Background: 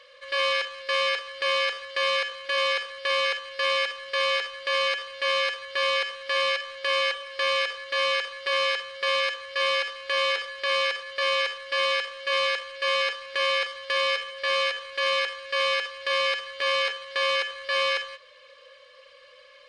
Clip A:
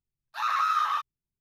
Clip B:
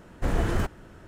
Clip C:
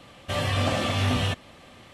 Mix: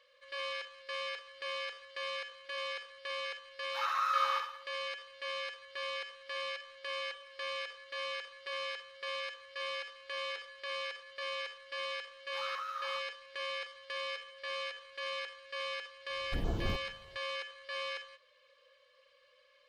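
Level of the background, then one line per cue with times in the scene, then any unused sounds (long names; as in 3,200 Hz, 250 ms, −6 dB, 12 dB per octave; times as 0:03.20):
background −14.5 dB
0:03.39: mix in A −7.5 dB + flutter between parallel walls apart 10.8 metres, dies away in 0.69 s
0:11.99: mix in A −15.5 dB
0:16.10: mix in B −9 dB + phaser swept by the level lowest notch 200 Hz, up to 2,000 Hz, full sweep at −19.5 dBFS
not used: C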